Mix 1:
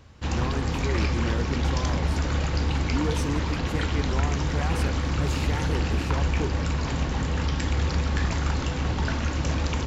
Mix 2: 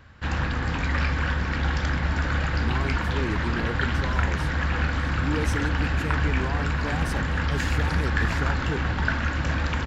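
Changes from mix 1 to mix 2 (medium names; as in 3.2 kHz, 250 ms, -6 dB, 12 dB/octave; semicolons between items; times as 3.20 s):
speech: entry +2.30 s; background: add fifteen-band graphic EQ 400 Hz -4 dB, 1.6 kHz +10 dB, 6.3 kHz -8 dB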